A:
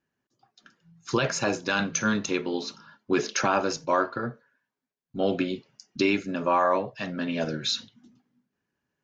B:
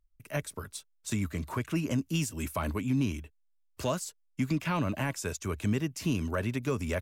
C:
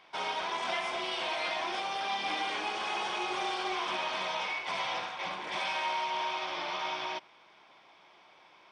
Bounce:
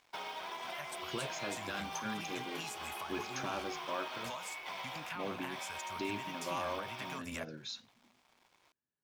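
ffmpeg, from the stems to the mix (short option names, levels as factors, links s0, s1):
-filter_complex "[0:a]volume=0.158[s0];[1:a]lowshelf=f=590:t=q:w=1.5:g=-13,acompressor=threshold=0.0251:ratio=6,adelay=450,volume=1.19[s1];[2:a]acrusher=bits=5:mode=log:mix=0:aa=0.000001,volume=0.841[s2];[s1][s2]amix=inputs=2:normalize=0,aeval=exprs='sgn(val(0))*max(abs(val(0))-0.00112,0)':c=same,acompressor=threshold=0.01:ratio=6,volume=1[s3];[s0][s3]amix=inputs=2:normalize=0"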